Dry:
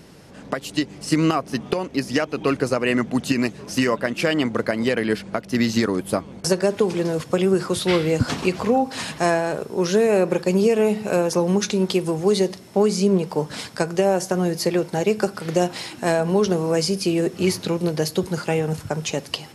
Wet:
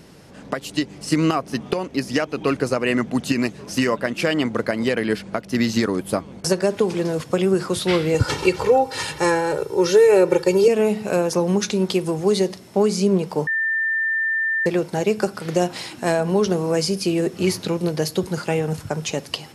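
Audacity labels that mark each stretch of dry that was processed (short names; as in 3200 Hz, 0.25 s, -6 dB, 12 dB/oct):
8.140000	10.680000	comb 2.2 ms, depth 95%
13.470000	14.660000	bleep 1790 Hz -18.5 dBFS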